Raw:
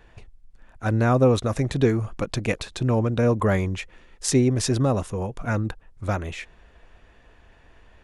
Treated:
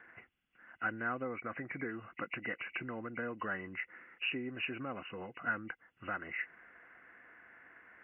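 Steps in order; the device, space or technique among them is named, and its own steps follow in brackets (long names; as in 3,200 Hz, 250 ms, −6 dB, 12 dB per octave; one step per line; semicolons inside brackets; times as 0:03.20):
0:01.24–0:01.91: high shelf with overshoot 5,800 Hz −13.5 dB, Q 1.5
hearing aid with frequency lowering (hearing-aid frequency compression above 1,900 Hz 4 to 1; downward compressor 3 to 1, threshold −33 dBFS, peak gain reduction 15 dB; loudspeaker in its box 350–5,100 Hz, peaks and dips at 420 Hz −9 dB, 600 Hz −9 dB, 900 Hz −8 dB, 1,500 Hz +9 dB, 2,400 Hz −5 dB, 3,400 Hz −6 dB)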